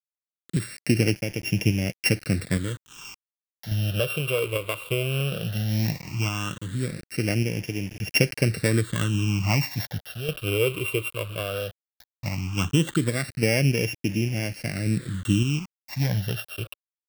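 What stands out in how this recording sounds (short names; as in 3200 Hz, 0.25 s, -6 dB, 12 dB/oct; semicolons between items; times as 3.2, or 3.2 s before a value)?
a buzz of ramps at a fixed pitch in blocks of 16 samples; random-step tremolo, depth 70%; a quantiser's noise floor 8-bit, dither none; phasing stages 8, 0.16 Hz, lowest notch 230–1200 Hz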